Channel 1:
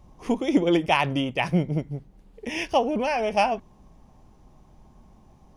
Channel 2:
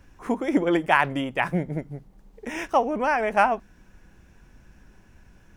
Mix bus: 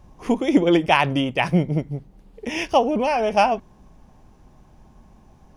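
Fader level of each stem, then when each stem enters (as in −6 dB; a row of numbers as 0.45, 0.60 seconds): +2.5, −10.5 decibels; 0.00, 0.00 seconds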